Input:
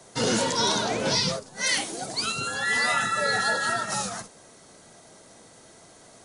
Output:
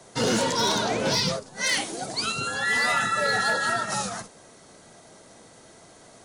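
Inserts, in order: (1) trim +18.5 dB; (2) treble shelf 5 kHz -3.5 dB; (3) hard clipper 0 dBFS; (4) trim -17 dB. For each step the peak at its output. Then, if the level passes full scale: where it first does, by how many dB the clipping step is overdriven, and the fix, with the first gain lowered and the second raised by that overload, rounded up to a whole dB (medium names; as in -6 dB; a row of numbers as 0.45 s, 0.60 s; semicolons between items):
+7.0 dBFS, +6.5 dBFS, 0.0 dBFS, -17.0 dBFS; step 1, 6.5 dB; step 1 +11.5 dB, step 4 -10 dB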